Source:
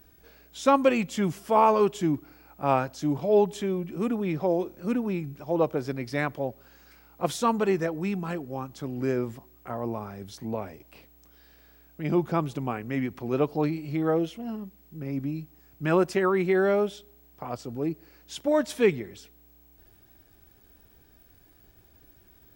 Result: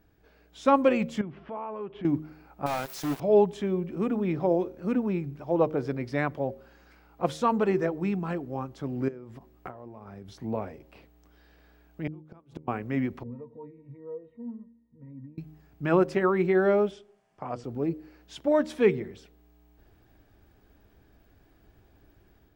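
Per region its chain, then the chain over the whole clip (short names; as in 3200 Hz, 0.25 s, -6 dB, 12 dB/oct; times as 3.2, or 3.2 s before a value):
1.21–2.05 LPF 3000 Hz 24 dB/oct + compressor 3:1, threshold -39 dBFS
2.66–3.2 zero-crossing step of -36.5 dBFS + pre-emphasis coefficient 0.8 + companded quantiser 2-bit
9.08–10.35 compressor 10:1, threshold -41 dBFS + transient shaper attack +10 dB, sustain -1 dB
12.07–12.68 notches 50/100/150/200/250 Hz + flipped gate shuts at -23 dBFS, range -31 dB
13.23–15.38 LPF 2900 Hz 24 dB/oct + compressor 2.5:1, threshold -31 dBFS + octave resonator A#, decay 0.13 s
16.91–17.64 LPF 10000 Hz 24 dB/oct + bell 3900 Hz -8 dB 0.25 oct + notches 60/120/180/240/300/360/420/480 Hz
whole clip: LPF 2100 Hz 6 dB/oct; de-hum 77.29 Hz, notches 7; AGC gain up to 5 dB; gain -4 dB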